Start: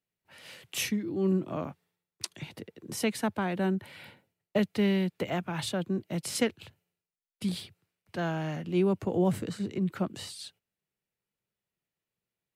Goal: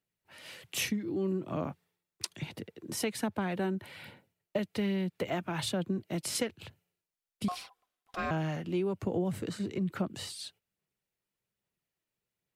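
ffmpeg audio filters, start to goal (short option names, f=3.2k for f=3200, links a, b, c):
-filter_complex "[0:a]asettb=1/sr,asplit=3[a][b][c];[a]atrim=end=7.484[d];[b]atrim=start=7.48:end=8.31,asetpts=PTS-STARTPTS,afade=t=in:d=0.004:c=qsin,afade=t=out:st=0.826:d=0.004:c=qsin,aeval=exprs='val(0)*sin(2*PI*900*n/s)':c=same[e];[c]atrim=start=8.306[f];[d][e]acrossfade=d=0.004:c1=hsin:c2=qsin[g];[g][f]acrossfade=d=0.004:c1=qsin:c2=hsin,aphaser=in_gain=1:out_gain=1:delay=3.3:decay=0.28:speed=1.2:type=sinusoidal,acompressor=threshold=-28dB:ratio=6"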